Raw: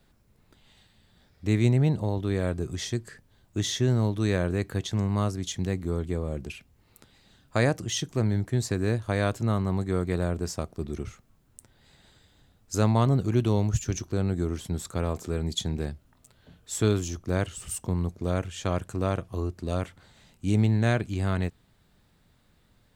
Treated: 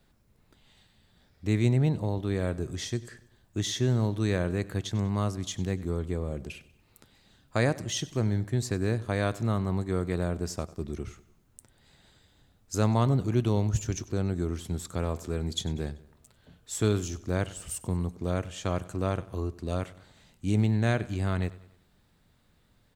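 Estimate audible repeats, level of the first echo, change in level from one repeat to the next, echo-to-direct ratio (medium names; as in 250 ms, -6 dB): 3, -19.0 dB, -6.5 dB, -18.0 dB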